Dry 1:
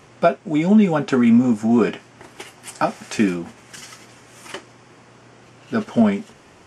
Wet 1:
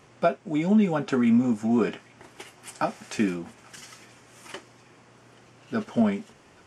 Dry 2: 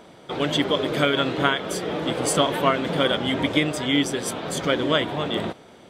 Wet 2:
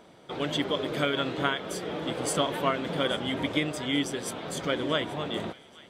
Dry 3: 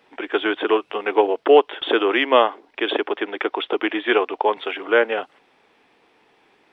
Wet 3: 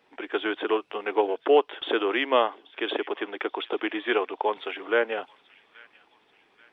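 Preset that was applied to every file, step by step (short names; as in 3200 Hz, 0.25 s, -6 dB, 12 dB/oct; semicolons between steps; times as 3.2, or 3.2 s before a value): thin delay 0.832 s, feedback 44%, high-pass 1600 Hz, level -20 dB; gain -6.5 dB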